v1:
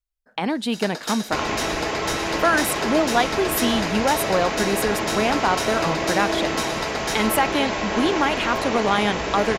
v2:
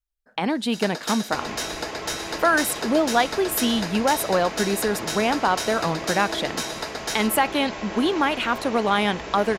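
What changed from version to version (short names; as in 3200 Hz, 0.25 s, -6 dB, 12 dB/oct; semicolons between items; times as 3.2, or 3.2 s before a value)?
second sound -8.5 dB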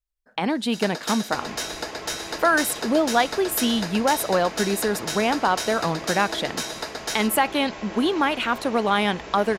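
second sound -3.5 dB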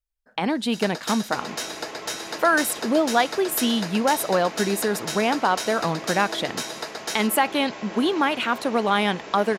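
second sound: add HPF 160 Hz 12 dB/oct; reverb: off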